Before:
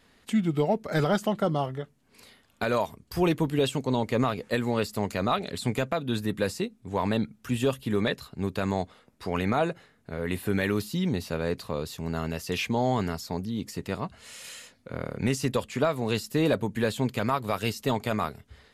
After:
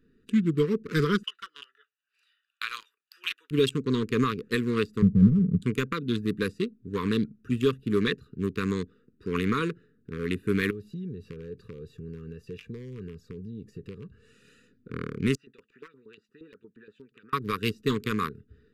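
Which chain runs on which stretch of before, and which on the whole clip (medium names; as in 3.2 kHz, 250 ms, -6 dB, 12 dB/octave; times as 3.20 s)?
1.23–3.51 s: high-pass 1.2 kHz 24 dB/octave + peaking EQ 3 kHz +8.5 dB 0.43 oct
5.02–5.62 s: steep low-pass 570 Hz 96 dB/octave + resonant low shelf 240 Hz +10.5 dB, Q 3
10.70–14.32 s: comb 1.8 ms, depth 53% + compression 3:1, threshold -36 dBFS
15.35–17.33 s: compression 2:1, threshold -31 dBFS + LFO band-pass saw up 8.5 Hz 740–3800 Hz
whole clip: local Wiener filter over 41 samples; elliptic band-stop 450–1100 Hz, stop band 50 dB; peaking EQ 60 Hz -8.5 dB 2 oct; trim +4 dB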